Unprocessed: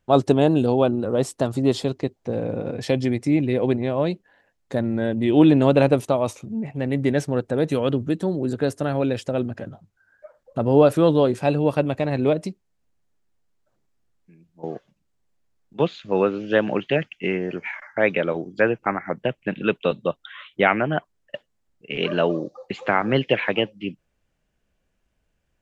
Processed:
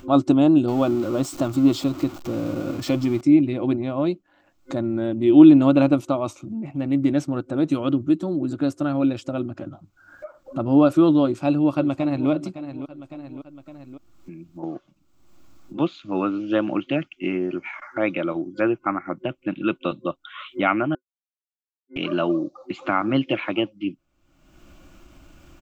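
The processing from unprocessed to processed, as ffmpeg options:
-filter_complex "[0:a]asettb=1/sr,asplit=3[a][b][c];[a]atrim=end=0.684[d];[b]atrim=start=0.68:end=3.21,asetpts=PTS-STARTPTS,afade=t=in:d=0.004:c=qsin,afade=t=out:st=2.526:d=0.004:c=qsin,aeval=exprs='val(0)+0.5*0.0316*sgn(val(0))':c=same[e];[c]atrim=start=3.206[f];[d][e]acrossfade=d=0.004:c1=hsin:c2=qsin[g];[g][f]acrossfade=d=0.004:c1=qsin:c2=hsin,asplit=2[h][i];[i]afade=t=in:st=11.22:d=0.01,afade=t=out:st=12.29:d=0.01,aecho=0:1:560|1120|1680:0.211349|0.0634047|0.0190214[j];[h][j]amix=inputs=2:normalize=0,asplit=3[k][l][m];[k]atrim=end=20.95,asetpts=PTS-STARTPTS,afade=t=out:st=20.946:d=0.004:c=hsin[n];[l]atrim=start=20.95:end=21.96,asetpts=PTS-STARTPTS,volume=0[o];[m]atrim=start=21.96,asetpts=PTS-STARTPTS,afade=t=in:d=0.004:c=hsin[p];[n][o][p]concat=n=3:v=0:a=1,superequalizer=6b=2.82:7b=0.355:10b=1.78:11b=0.501:16b=0.398,acompressor=mode=upward:threshold=-23dB:ratio=2.5,volume=-3.5dB"

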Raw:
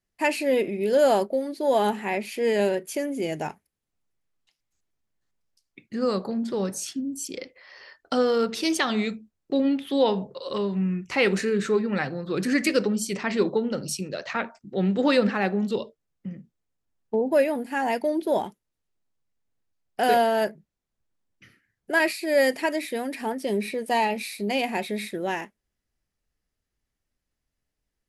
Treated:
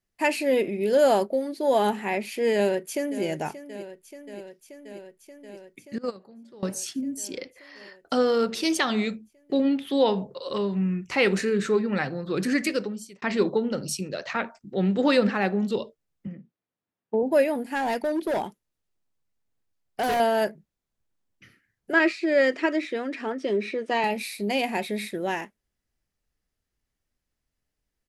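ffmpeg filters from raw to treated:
-filter_complex "[0:a]asplit=2[a][b];[b]afade=t=in:st=2.53:d=0.01,afade=t=out:st=3.24:d=0.01,aecho=0:1:580|1160|1740|2320|2900|3480|4060|4640|5220|5800|6380|6960:0.199526|0.159621|0.127697|0.102157|0.0817259|0.0653808|0.0523046|0.0418437|0.0334749|0.02678|0.021424|0.0171392[c];[a][c]amix=inputs=2:normalize=0,asettb=1/sr,asplit=3[d][e][f];[d]atrim=end=5.984[g];[e]atrim=start=5.98:end=6.63,asetpts=PTS-STARTPTS,afade=t=in:d=0.004:c=qsin,afade=t=out:st=0.646:d=0.004:c=qsin,agate=range=-20dB:threshold=-22dB:ratio=16:release=100:detection=peak[h];[f]atrim=start=6.626[i];[g][h]acrossfade=d=0.004:c1=hsin:c2=qsin[j];[j][i]acrossfade=d=0.004:c1=qsin:c2=hsin,asettb=1/sr,asplit=3[k][l][m];[k]atrim=end=16.274[n];[l]atrim=start=16.27:end=17.23,asetpts=PTS-STARTPTS,afade=t=in:d=0.004:c=qsin,afade=t=out:st=0.956:d=0.004:c=qsin,highpass=150,lowpass=3.1k[o];[m]atrim=start=17.226[p];[n][o]acrossfade=d=0.004:c1=hsin:c2=qsin[q];[q][p]acrossfade=d=0.004:c1=qsin:c2=hsin,asettb=1/sr,asplit=3[r][s][t];[r]atrim=end=17.754[u];[s]atrim=start=17.75:end=20.2,asetpts=PTS-STARTPTS,afade=t=in:d=0.004:c=qsin,afade=t=out:st=2.446:d=0.004:c=qsin,volume=22dB,asoftclip=hard,volume=-22dB[v];[t]atrim=start=20.196[w];[u][v]acrossfade=d=0.004:c1=hsin:c2=qsin[x];[x][w]acrossfade=d=0.004:c1=qsin:c2=hsin,asettb=1/sr,asplit=3[y][z][aa];[y]atrim=end=21.934[ab];[z]atrim=start=21.93:end=24.04,asetpts=PTS-STARTPTS,afade=t=in:d=0.004:c=qsin,afade=t=out:st=2.106:d=0.004:c=qsin,highpass=240,equalizer=f=340:t=q:w=4:g=8,equalizer=f=820:t=q:w=4:g=-8,equalizer=f=1.3k:t=q:w=4:g=7,equalizer=f=4.6k:t=q:w=4:g=-6,lowpass=f=6k:w=0.5412,lowpass=f=6k:w=1.3066[ac];[aa]atrim=start=24.036[ad];[ab][ac]acrossfade=d=0.004:c1=hsin:c2=qsin[ae];[ae][ad]acrossfade=d=0.004:c1=qsin:c2=hsin,asplit=2[af][ag];[af]atrim=end=13.22,asetpts=PTS-STARTPTS,afade=t=out:st=12.45:d=0.77[ah];[ag]atrim=start=13.22,asetpts=PTS-STARTPTS,afade=t=in:d=0.004:c=hsin[ai];[ah][ai]concat=n=2:v=0:a=1"

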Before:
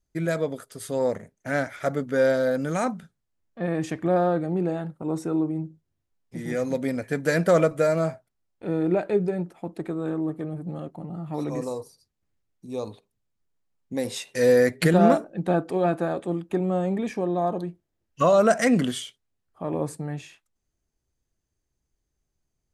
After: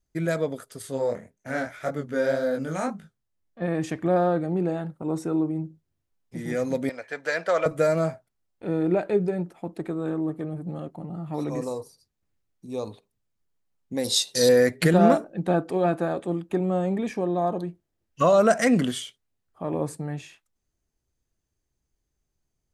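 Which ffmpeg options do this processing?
-filter_complex "[0:a]asettb=1/sr,asplit=3[a][b][c];[a]atrim=end=0.824[d];[b]atrim=start=0.82:end=3.62,asetpts=PTS-STARTPTS,afade=t=in:d=0.004:c=qsin,afade=t=out:st=2.796:d=0.004:c=qsin,flanger=delay=19:depth=7:speed=1.8[e];[c]atrim=start=3.616[f];[d][e]acrossfade=d=0.004:c1=hsin:c2=qsin[g];[g][f]acrossfade=d=0.004:c1=qsin:c2=hsin,asettb=1/sr,asplit=3[h][i][j];[h]atrim=end=6.894[k];[i]atrim=start=6.89:end=7.66,asetpts=PTS-STARTPTS,afade=t=in:d=0.004:c=qsin,afade=t=out:st=0.766:d=0.004:c=qsin,acrossover=split=510 6300:gain=0.0794 1 0.1[l][m][n];[l][m][n]amix=inputs=3:normalize=0[o];[j]atrim=start=7.656[p];[k][o]acrossfade=d=0.004:c1=hsin:c2=qsin[q];[q][p]acrossfade=d=0.004:c1=qsin:c2=hsin,asettb=1/sr,asplit=3[r][s][t];[r]atrim=end=14.044[u];[s]atrim=start=14.04:end=14.49,asetpts=PTS-STARTPTS,afade=t=in:d=0.004:c=qsin,afade=t=out:st=0.446:d=0.004:c=qsin,highshelf=f=3.1k:t=q:w=3:g=9[v];[t]atrim=start=14.486[w];[u][v]acrossfade=d=0.004:c1=hsin:c2=qsin[x];[x][w]acrossfade=d=0.004:c1=qsin:c2=hsin"

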